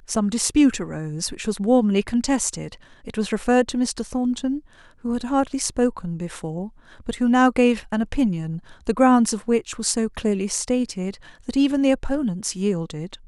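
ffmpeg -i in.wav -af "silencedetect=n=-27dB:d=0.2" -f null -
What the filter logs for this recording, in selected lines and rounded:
silence_start: 2.73
silence_end: 3.07 | silence_duration: 0.35
silence_start: 4.58
silence_end: 5.05 | silence_duration: 0.47
silence_start: 6.66
silence_end: 7.09 | silence_duration: 0.43
silence_start: 8.58
silence_end: 8.87 | silence_duration: 0.30
silence_start: 11.11
silence_end: 11.49 | silence_duration: 0.38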